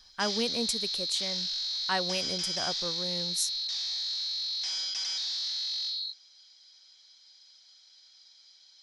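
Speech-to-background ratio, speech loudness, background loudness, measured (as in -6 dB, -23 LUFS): -4.5 dB, -34.5 LUFS, -30.0 LUFS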